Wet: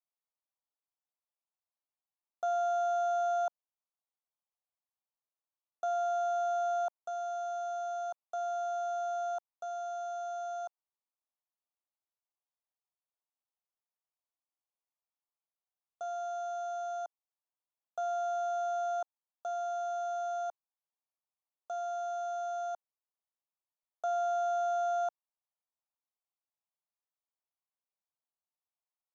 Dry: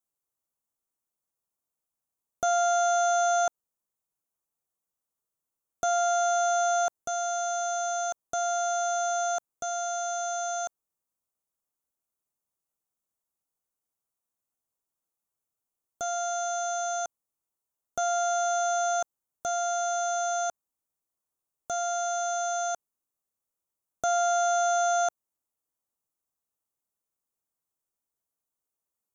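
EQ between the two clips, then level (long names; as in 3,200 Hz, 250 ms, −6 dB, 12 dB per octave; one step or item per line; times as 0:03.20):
band-pass filter 530–2,300 Hz
phaser with its sweep stopped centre 800 Hz, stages 4
−4.0 dB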